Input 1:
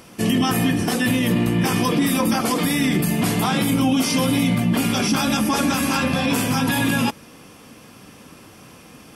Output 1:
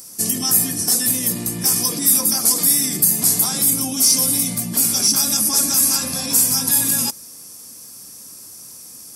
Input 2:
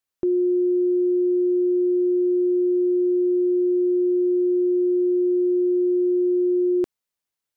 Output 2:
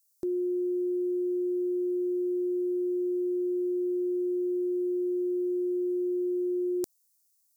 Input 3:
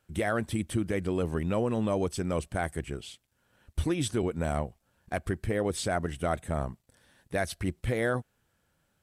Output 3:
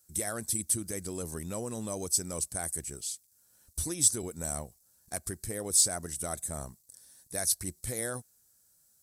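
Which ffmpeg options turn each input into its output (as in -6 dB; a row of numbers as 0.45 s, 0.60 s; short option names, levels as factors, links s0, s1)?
-af "aexciter=amount=10.2:drive=7.5:freq=4500,volume=0.355"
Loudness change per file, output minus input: +4.5 LU, -9.0 LU, +0.5 LU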